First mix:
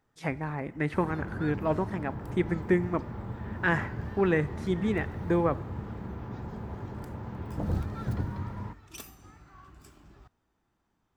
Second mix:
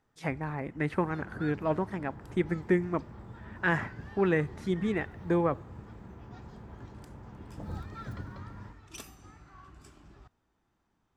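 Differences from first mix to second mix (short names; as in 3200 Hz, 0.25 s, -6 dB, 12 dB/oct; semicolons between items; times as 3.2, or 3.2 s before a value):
speech: send -7.0 dB; first sound: add LPF 10000 Hz 12 dB/oct; second sound -9.5 dB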